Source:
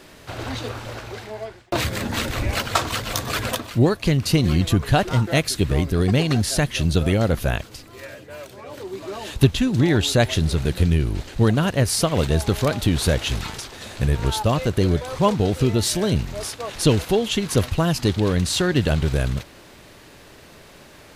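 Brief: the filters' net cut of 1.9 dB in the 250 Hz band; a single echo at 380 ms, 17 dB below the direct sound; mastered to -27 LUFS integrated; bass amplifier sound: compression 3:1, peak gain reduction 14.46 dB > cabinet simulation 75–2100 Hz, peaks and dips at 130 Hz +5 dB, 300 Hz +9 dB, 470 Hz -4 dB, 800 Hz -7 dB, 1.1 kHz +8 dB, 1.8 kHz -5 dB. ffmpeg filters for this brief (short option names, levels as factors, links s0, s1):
-af "equalizer=f=250:t=o:g=-8.5,aecho=1:1:380:0.141,acompressor=threshold=0.0282:ratio=3,highpass=f=75:w=0.5412,highpass=f=75:w=1.3066,equalizer=f=130:t=q:w=4:g=5,equalizer=f=300:t=q:w=4:g=9,equalizer=f=470:t=q:w=4:g=-4,equalizer=f=800:t=q:w=4:g=-7,equalizer=f=1100:t=q:w=4:g=8,equalizer=f=1800:t=q:w=4:g=-5,lowpass=f=2100:w=0.5412,lowpass=f=2100:w=1.3066,volume=2"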